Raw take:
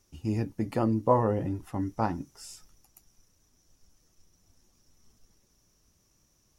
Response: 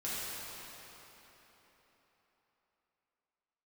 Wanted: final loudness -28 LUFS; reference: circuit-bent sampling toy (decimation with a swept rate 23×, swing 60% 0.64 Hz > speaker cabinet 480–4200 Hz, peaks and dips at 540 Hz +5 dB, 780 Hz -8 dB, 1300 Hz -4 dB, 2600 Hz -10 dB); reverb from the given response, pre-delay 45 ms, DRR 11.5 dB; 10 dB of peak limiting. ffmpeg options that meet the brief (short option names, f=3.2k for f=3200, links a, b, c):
-filter_complex "[0:a]alimiter=limit=-19dB:level=0:latency=1,asplit=2[a][b];[1:a]atrim=start_sample=2205,adelay=45[c];[b][c]afir=irnorm=-1:irlink=0,volume=-16.5dB[d];[a][d]amix=inputs=2:normalize=0,acrusher=samples=23:mix=1:aa=0.000001:lfo=1:lforange=13.8:lforate=0.64,highpass=480,equalizer=f=540:t=q:w=4:g=5,equalizer=f=780:t=q:w=4:g=-8,equalizer=f=1.3k:t=q:w=4:g=-4,equalizer=f=2.6k:t=q:w=4:g=-10,lowpass=f=4.2k:w=0.5412,lowpass=f=4.2k:w=1.3066,volume=9dB"